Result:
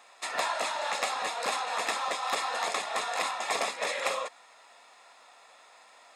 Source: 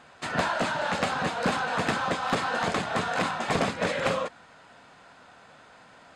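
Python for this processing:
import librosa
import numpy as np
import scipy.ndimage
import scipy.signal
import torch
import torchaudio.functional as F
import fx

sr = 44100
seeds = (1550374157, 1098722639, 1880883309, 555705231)

y = scipy.signal.sosfilt(scipy.signal.butter(2, 620.0, 'highpass', fs=sr, output='sos'), x)
y = fx.high_shelf(y, sr, hz=5900.0, db=11.5)
y = fx.notch_comb(y, sr, f0_hz=1500.0)
y = y * 10.0 ** (-1.5 / 20.0)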